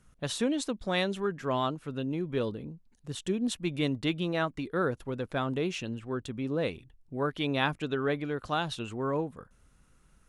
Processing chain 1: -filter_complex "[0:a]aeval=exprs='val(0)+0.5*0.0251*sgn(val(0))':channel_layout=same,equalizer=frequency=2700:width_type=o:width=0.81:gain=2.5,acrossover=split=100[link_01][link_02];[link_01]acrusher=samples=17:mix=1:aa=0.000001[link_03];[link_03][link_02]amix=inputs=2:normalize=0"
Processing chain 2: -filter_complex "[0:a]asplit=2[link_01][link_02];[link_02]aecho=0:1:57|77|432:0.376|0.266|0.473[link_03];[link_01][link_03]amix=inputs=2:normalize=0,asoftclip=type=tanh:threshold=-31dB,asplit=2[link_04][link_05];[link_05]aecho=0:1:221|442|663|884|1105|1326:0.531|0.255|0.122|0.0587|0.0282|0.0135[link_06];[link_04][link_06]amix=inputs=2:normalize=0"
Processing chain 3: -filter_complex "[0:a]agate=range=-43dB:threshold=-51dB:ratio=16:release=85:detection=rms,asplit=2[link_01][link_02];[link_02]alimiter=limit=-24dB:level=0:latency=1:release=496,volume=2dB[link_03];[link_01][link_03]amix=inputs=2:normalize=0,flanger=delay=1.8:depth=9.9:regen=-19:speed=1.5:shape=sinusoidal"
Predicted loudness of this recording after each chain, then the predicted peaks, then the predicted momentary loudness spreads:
−29.5, −34.5, −30.5 LKFS; −9.0, −25.0, −13.0 dBFS; 9, 4, 6 LU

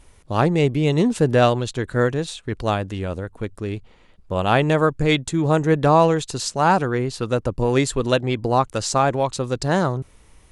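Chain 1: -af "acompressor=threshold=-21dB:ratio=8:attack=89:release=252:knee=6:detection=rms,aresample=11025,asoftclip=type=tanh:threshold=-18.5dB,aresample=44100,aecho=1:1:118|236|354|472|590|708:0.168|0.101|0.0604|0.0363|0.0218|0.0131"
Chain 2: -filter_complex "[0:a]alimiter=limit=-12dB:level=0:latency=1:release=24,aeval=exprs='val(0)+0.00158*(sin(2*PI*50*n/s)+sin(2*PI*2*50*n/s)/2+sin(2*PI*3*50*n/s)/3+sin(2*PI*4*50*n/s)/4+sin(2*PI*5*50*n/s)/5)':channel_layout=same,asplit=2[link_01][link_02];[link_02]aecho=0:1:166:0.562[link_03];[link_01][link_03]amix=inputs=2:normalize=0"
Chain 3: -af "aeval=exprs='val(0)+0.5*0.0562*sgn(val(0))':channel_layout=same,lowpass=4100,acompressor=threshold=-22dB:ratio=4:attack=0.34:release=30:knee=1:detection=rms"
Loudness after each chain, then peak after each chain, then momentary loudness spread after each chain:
−27.5, −22.5, −27.0 LKFS; −15.5, −8.0, −16.5 dBFS; 6, 8, 4 LU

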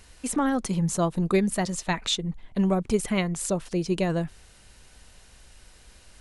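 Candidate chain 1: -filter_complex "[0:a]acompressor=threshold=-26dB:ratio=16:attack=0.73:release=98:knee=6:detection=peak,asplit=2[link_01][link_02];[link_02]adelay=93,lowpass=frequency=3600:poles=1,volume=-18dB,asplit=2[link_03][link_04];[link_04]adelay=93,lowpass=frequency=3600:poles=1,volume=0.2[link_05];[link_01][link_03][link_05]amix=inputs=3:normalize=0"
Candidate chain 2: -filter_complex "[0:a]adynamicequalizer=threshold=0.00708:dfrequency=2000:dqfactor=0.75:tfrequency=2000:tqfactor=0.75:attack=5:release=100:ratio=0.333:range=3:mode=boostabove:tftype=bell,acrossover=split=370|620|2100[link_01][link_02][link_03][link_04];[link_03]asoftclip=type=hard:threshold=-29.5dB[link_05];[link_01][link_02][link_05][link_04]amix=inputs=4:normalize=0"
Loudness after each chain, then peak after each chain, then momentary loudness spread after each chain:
−33.0, −26.0 LKFS; −17.5, −10.5 dBFS; 21, 5 LU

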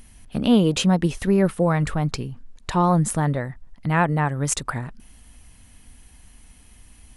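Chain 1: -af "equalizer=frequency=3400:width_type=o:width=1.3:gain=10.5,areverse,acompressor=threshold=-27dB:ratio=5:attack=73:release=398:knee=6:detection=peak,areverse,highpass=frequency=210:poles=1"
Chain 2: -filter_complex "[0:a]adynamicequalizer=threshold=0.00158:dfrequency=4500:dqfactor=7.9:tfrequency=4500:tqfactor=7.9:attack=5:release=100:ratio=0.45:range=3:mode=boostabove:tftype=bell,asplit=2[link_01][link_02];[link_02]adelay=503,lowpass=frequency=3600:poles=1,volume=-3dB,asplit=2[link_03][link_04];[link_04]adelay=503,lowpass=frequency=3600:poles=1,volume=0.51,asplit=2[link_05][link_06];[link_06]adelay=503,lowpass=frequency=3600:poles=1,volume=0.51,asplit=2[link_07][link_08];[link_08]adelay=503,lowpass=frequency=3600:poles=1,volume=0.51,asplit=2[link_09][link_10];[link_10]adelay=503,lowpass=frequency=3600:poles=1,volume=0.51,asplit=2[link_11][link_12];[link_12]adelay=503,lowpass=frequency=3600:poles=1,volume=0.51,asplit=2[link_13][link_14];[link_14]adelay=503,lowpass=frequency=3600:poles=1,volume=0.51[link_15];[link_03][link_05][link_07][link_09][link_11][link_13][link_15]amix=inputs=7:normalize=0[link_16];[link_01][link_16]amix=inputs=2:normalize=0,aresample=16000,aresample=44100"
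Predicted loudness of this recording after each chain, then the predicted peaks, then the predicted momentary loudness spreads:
−30.0, −20.5 LKFS; −10.0, −5.5 dBFS; 22, 15 LU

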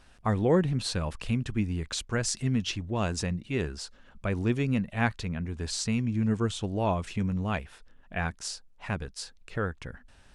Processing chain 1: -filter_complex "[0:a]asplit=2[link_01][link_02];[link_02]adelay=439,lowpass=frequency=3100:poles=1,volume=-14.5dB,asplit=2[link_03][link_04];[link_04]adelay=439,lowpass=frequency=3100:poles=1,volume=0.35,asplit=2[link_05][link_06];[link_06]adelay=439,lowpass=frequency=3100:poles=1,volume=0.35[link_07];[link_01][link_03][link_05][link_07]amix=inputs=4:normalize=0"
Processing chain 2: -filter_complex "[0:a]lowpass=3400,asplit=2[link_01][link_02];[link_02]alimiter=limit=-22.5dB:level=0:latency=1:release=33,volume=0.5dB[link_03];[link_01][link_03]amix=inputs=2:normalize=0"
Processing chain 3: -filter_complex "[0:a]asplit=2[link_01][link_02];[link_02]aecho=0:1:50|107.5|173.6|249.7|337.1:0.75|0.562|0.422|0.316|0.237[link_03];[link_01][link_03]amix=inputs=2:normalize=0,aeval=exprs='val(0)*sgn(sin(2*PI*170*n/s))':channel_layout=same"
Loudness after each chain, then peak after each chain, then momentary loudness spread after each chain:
−30.0, −25.5, −27.5 LKFS; −12.5, −10.0, −9.0 dBFS; 10, 14, 9 LU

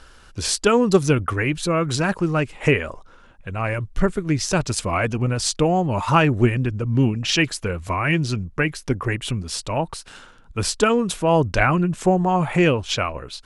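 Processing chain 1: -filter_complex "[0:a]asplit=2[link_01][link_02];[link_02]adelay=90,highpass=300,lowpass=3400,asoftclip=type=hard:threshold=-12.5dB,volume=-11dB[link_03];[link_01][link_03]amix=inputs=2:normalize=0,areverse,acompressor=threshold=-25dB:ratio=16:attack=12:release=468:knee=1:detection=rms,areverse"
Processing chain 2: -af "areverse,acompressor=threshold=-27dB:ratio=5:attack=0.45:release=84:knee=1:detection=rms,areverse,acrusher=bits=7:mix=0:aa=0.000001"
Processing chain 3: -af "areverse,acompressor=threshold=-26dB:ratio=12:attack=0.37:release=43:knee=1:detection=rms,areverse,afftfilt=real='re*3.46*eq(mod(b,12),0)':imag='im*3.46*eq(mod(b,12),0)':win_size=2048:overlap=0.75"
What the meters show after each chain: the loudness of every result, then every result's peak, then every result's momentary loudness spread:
−31.5, −32.0, −37.0 LKFS; −14.5, −19.0, −21.5 dBFS; 5, 4, 8 LU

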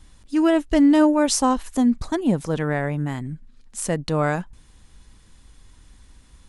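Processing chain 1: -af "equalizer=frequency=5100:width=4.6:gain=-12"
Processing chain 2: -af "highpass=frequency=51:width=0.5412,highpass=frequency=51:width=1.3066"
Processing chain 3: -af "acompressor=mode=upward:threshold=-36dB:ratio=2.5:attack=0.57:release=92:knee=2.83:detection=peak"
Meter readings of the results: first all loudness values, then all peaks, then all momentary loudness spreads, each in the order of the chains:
−21.0, −21.0, −21.0 LKFS; −6.5, −6.5, −6.5 dBFS; 14, 14, 14 LU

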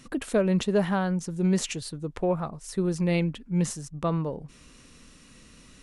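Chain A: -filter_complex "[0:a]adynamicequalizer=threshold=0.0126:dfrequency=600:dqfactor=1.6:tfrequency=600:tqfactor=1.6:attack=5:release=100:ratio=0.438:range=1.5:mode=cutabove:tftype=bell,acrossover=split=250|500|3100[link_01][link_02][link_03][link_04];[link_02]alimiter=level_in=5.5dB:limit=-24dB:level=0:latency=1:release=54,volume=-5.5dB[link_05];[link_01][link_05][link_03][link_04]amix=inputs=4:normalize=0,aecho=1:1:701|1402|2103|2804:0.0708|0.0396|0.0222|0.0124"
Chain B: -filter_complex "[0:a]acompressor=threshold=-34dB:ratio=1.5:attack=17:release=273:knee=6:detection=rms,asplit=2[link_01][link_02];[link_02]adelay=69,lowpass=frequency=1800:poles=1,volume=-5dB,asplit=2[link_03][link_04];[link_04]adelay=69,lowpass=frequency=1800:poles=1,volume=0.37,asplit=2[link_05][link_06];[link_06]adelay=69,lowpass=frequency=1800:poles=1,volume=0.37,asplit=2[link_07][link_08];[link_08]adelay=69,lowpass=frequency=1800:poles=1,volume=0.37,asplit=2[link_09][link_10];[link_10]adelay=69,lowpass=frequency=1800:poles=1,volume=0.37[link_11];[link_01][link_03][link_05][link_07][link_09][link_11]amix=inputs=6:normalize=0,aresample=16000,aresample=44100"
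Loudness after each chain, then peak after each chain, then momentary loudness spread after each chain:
−28.5, −31.0 LKFS; −14.5, −17.5 dBFS; 11, 8 LU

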